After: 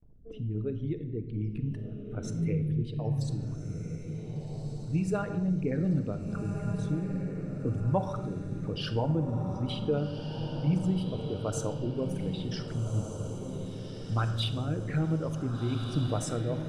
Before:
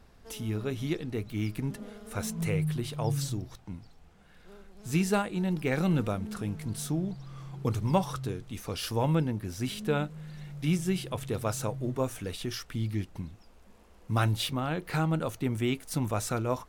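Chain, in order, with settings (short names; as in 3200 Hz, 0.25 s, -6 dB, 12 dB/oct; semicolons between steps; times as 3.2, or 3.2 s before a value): formant sharpening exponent 2; low-pass opened by the level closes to 610 Hz, open at -26.5 dBFS; gate with hold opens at -52 dBFS; on a send at -7.5 dB: reverb RT60 1.4 s, pre-delay 7 ms; on the sum: rotary speaker horn 1.1 Hz; in parallel at +0.5 dB: compressor, threshold -37 dBFS, peak gain reduction 16.5 dB; on the sum: diffused feedback echo 1.554 s, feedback 50%, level -7 dB; gain -3.5 dB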